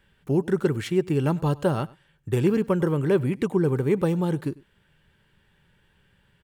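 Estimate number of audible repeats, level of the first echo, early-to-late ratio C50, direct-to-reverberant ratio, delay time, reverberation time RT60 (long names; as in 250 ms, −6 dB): 1, −22.5 dB, no reverb audible, no reverb audible, 99 ms, no reverb audible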